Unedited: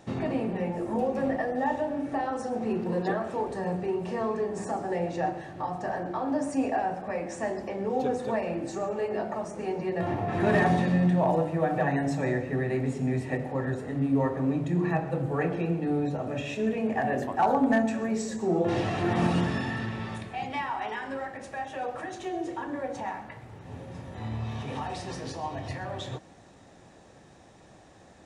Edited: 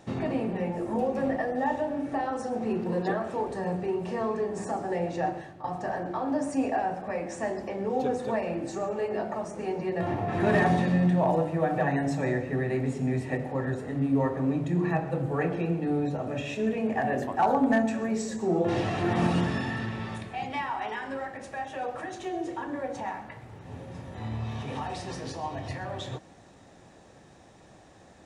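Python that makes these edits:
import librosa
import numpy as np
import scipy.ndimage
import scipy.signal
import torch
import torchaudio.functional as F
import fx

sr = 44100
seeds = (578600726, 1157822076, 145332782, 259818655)

y = fx.edit(x, sr, fx.fade_out_to(start_s=5.38, length_s=0.26, floor_db=-13.0), tone=tone)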